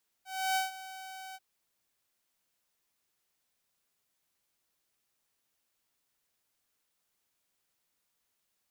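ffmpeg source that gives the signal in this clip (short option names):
-f lavfi -i "aevalsrc='0.0631*(2*mod(760*t,1)-1)':d=1.14:s=44100,afade=t=in:d=0.309,afade=t=out:st=0.309:d=0.147:silence=0.15,afade=t=out:st=1.1:d=0.04"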